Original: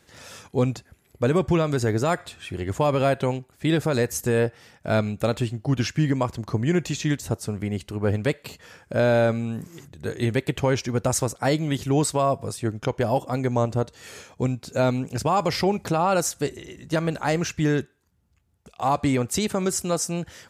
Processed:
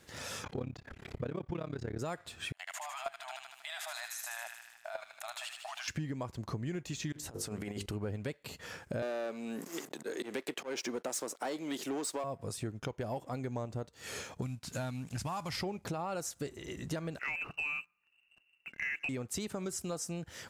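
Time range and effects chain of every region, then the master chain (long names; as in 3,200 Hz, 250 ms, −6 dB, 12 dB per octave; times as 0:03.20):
0:00.44–0:01.99: low-pass filter 3,800 Hz + upward compression, threshold −27 dBFS + amplitude modulation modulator 34 Hz, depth 90%
0:02.52–0:05.88: linear-phase brick-wall high-pass 610 Hz + output level in coarse steps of 22 dB + delay with a high-pass on its return 77 ms, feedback 68%, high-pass 1,600 Hz, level −5 dB
0:07.12–0:07.86: parametric band 100 Hz −7 dB 2.9 octaves + mains-hum notches 50/100/150/200/250/300/350/400/450/500 Hz + compressor whose output falls as the input rises −35 dBFS, ratio −0.5
0:09.02–0:12.24: leveller curve on the samples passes 2 + volume swells 236 ms + high-pass filter 270 Hz 24 dB per octave
0:14.42–0:15.57: variable-slope delta modulation 64 kbit/s + parametric band 440 Hz −13.5 dB 0.98 octaves
0:17.19–0:19.09: floating-point word with a short mantissa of 2 bits + voice inversion scrambler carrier 2,800 Hz
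whole clip: downward compressor 6 to 1, threshold −37 dBFS; leveller curve on the samples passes 1; level −2.5 dB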